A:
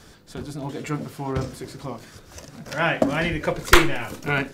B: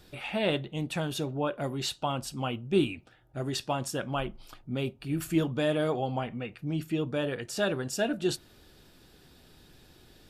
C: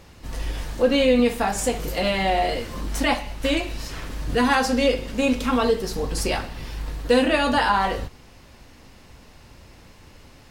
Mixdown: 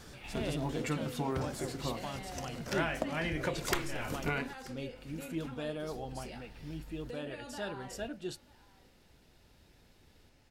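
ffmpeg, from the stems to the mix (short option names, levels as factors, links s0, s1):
-filter_complex "[0:a]acompressor=threshold=0.0501:ratio=20,volume=0.668,asplit=2[s0][s1];[s1]volume=0.0841[s2];[1:a]volume=0.266[s3];[2:a]acompressor=threshold=0.0447:ratio=6,bandreject=f=1100:w=6.2,volume=0.15,asplit=2[s4][s5];[s5]volume=0.0944[s6];[s2][s6]amix=inputs=2:normalize=0,aecho=0:1:934:1[s7];[s0][s3][s4][s7]amix=inputs=4:normalize=0"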